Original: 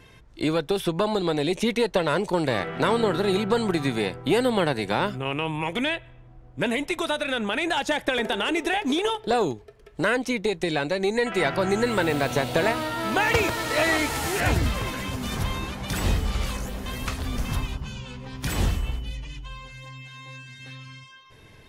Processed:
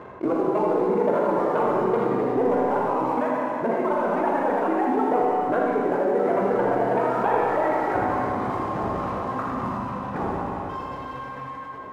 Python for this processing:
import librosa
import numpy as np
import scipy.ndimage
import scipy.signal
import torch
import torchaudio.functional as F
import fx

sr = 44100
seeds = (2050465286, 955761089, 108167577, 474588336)

p1 = fx.cvsd(x, sr, bps=32000)
p2 = scipy.signal.sosfilt(scipy.signal.butter(4, 1100.0, 'lowpass', fs=sr, output='sos'), p1)
p3 = fx.dereverb_blind(p2, sr, rt60_s=1.8)
p4 = scipy.signal.sosfilt(scipy.signal.butter(2, 200.0, 'highpass', fs=sr, output='sos'), p3)
p5 = fx.tilt_shelf(p4, sr, db=-5.0, hz=660.0)
p6 = fx.leveller(p5, sr, passes=1)
p7 = fx.stretch_grains(p6, sr, factor=0.55, grain_ms=40.0)
p8 = fx.doubler(p7, sr, ms=16.0, db=-11.5)
p9 = p8 + fx.echo_single(p8, sr, ms=81, db=-6.5, dry=0)
p10 = fx.rev_schroeder(p9, sr, rt60_s=2.3, comb_ms=31, drr_db=-2.0)
p11 = fx.env_flatten(p10, sr, amount_pct=50)
y = p11 * 10.0 ** (-2.0 / 20.0)